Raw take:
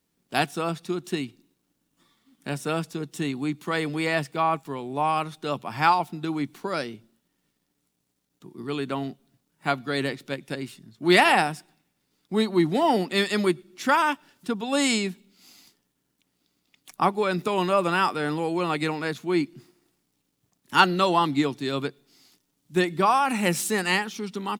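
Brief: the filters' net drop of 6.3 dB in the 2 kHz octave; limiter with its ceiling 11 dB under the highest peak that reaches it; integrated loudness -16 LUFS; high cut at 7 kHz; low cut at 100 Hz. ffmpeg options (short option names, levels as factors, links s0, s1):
-af "highpass=100,lowpass=7000,equalizer=f=2000:t=o:g=-8.5,volume=4.73,alimiter=limit=0.631:level=0:latency=1"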